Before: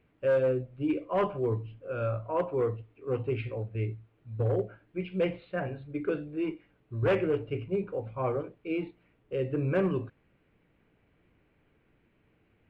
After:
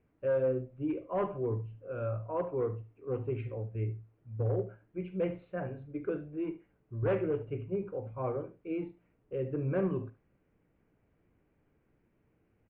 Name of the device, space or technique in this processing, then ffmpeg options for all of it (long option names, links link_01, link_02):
phone in a pocket: -af "lowpass=3100,highshelf=frequency=2200:gain=-11.5,aecho=1:1:46|73:0.141|0.178,volume=-3.5dB"